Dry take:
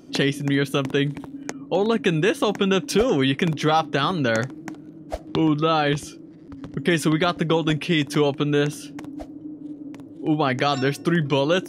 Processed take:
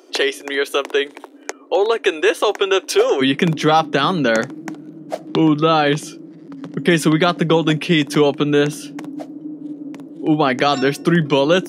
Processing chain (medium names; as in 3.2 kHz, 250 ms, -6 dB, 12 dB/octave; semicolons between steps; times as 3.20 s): Chebyshev high-pass 370 Hz, order 4, from 3.20 s 160 Hz; trim +6 dB